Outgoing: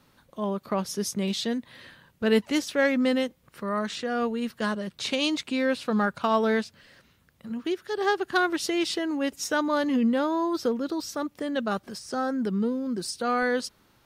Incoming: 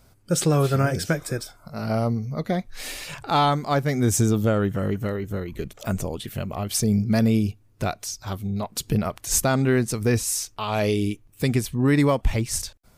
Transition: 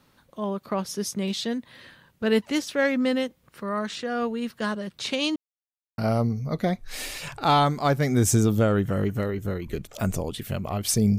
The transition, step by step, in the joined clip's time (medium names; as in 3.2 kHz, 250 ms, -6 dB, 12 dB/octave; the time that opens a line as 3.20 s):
outgoing
5.36–5.98 s: mute
5.98 s: go over to incoming from 1.84 s